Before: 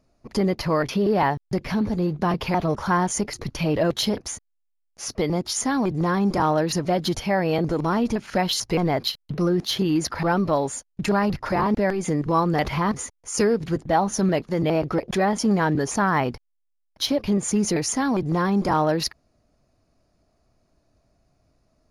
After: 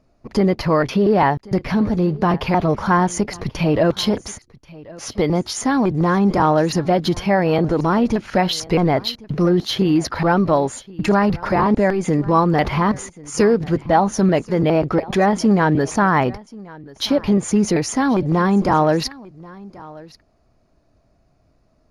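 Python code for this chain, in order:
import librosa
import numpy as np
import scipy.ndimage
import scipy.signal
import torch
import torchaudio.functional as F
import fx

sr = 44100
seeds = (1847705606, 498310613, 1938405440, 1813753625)

p1 = fx.high_shelf(x, sr, hz=5000.0, db=-9.5)
p2 = p1 + fx.echo_single(p1, sr, ms=1084, db=-21.5, dry=0)
y = F.gain(torch.from_numpy(p2), 5.5).numpy()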